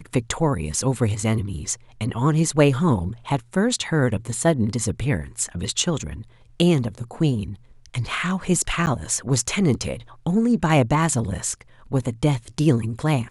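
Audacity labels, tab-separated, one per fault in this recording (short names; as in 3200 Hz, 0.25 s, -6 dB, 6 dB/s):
8.860000	8.870000	gap 9.4 ms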